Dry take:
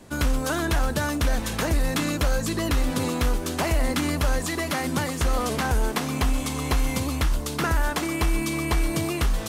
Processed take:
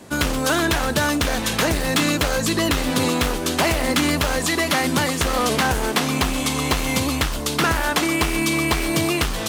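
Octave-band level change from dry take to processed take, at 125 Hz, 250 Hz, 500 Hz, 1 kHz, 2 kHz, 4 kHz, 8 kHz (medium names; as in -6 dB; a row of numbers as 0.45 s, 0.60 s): +1.0 dB, +5.0 dB, +5.5 dB, +6.0 dB, +7.5 dB, +9.5 dB, +7.0 dB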